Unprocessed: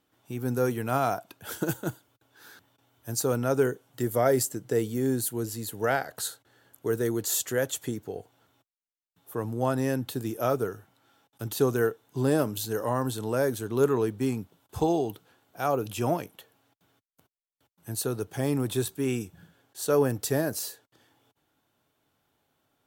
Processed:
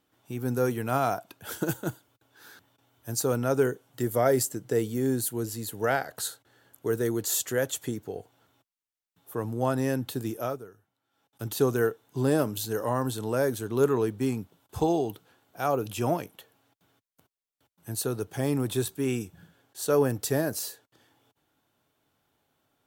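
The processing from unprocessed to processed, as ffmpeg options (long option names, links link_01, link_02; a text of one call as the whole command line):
ffmpeg -i in.wav -filter_complex "[0:a]asplit=3[link_01][link_02][link_03];[link_01]atrim=end=10.63,asetpts=PTS-STARTPTS,afade=type=out:start_time=10.3:duration=0.33:silence=0.16788[link_04];[link_02]atrim=start=10.63:end=11.1,asetpts=PTS-STARTPTS,volume=-15.5dB[link_05];[link_03]atrim=start=11.1,asetpts=PTS-STARTPTS,afade=type=in:duration=0.33:silence=0.16788[link_06];[link_04][link_05][link_06]concat=n=3:v=0:a=1" out.wav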